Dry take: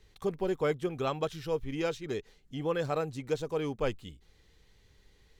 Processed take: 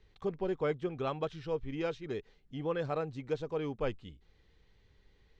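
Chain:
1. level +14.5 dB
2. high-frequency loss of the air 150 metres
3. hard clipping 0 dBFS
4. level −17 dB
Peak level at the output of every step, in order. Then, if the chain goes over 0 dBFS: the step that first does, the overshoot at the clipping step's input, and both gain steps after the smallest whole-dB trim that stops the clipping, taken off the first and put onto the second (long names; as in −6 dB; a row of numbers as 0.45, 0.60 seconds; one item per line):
−2.5, −3.5, −3.5, −20.5 dBFS
no step passes full scale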